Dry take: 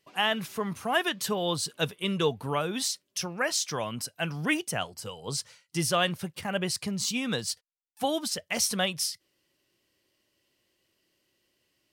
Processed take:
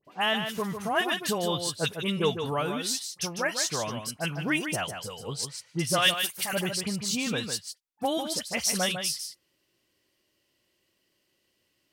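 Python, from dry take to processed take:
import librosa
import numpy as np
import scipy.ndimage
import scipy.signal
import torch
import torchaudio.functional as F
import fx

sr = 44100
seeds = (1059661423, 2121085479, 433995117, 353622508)

p1 = fx.tilt_eq(x, sr, slope=4.5, at=(5.98, 6.53))
p2 = fx.dispersion(p1, sr, late='highs', ms=51.0, hz=1900.0)
y = p2 + fx.echo_single(p2, sr, ms=151, db=-7.5, dry=0)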